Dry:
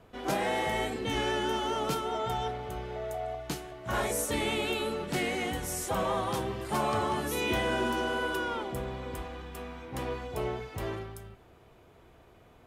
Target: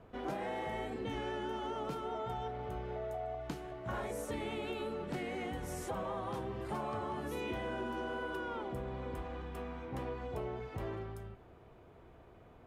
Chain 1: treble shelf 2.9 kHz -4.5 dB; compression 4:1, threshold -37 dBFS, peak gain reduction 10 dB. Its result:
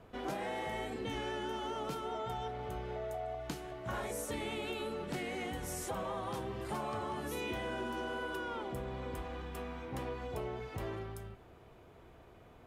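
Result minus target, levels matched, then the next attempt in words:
8 kHz band +6.0 dB
treble shelf 2.9 kHz -13 dB; compression 4:1, threshold -37 dBFS, peak gain reduction 9.5 dB

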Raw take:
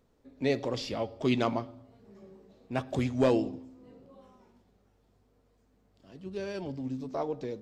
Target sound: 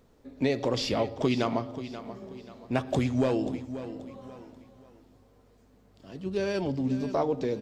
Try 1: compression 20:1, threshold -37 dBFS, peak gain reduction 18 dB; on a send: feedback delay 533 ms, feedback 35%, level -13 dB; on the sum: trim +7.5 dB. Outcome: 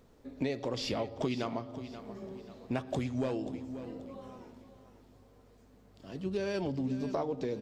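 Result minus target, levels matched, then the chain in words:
compression: peak gain reduction +7.5 dB
compression 20:1, threshold -29 dBFS, peak gain reduction 10.5 dB; on a send: feedback delay 533 ms, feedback 35%, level -13 dB; on the sum: trim +7.5 dB

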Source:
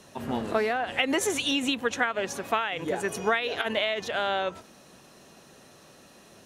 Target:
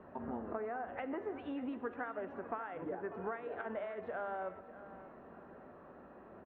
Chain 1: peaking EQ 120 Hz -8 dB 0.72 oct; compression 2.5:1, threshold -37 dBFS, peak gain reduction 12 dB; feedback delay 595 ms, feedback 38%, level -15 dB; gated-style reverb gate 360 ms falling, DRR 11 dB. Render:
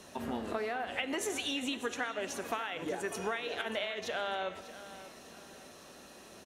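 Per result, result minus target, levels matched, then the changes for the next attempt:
compression: peak gain reduction -4 dB; 2 kHz band +4.0 dB
change: compression 2.5:1, threshold -44.5 dBFS, peak gain reduction 16.5 dB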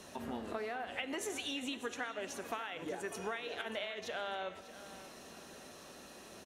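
2 kHz band +4.5 dB
add first: low-pass 1.5 kHz 24 dB/octave

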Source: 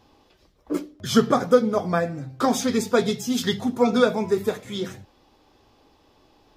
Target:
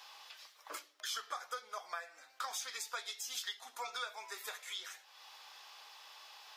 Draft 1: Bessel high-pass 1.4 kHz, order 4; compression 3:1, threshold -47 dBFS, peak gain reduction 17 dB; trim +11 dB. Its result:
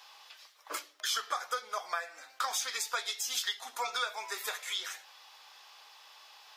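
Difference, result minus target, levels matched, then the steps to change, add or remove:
compression: peak gain reduction -7.5 dB
change: compression 3:1, threshold -58.5 dBFS, peak gain reduction 24.5 dB

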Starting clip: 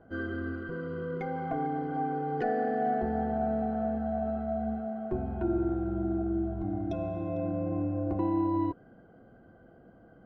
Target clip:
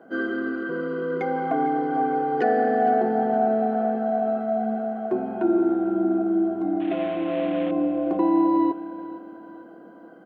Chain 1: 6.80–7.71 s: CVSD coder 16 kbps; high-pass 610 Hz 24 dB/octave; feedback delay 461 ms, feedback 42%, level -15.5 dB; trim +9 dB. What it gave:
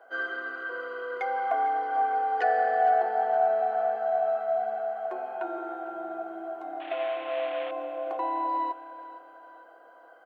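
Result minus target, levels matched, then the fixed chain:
250 Hz band -17.5 dB
6.80–7.71 s: CVSD coder 16 kbps; high-pass 220 Hz 24 dB/octave; feedback delay 461 ms, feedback 42%, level -15.5 dB; trim +9 dB

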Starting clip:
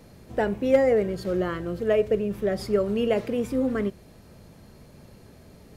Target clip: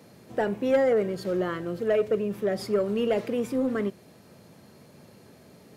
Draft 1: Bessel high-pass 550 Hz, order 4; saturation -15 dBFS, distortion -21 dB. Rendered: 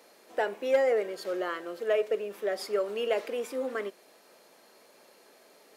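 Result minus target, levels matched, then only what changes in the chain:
125 Hz band -18.5 dB
change: Bessel high-pass 150 Hz, order 4

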